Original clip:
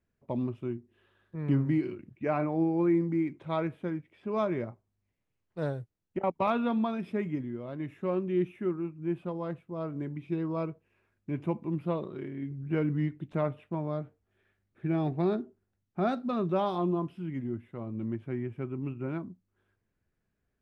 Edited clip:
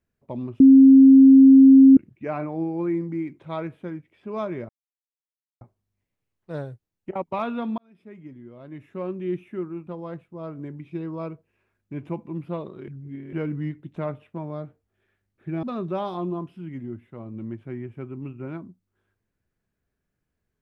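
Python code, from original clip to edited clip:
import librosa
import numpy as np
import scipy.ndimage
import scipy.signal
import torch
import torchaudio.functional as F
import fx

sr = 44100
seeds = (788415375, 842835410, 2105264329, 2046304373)

y = fx.edit(x, sr, fx.bleep(start_s=0.6, length_s=1.37, hz=268.0, db=-7.0),
    fx.insert_silence(at_s=4.69, length_s=0.92),
    fx.fade_in_span(start_s=6.86, length_s=1.38),
    fx.cut(start_s=8.95, length_s=0.29),
    fx.reverse_span(start_s=12.25, length_s=0.45),
    fx.cut(start_s=15.0, length_s=1.24), tone=tone)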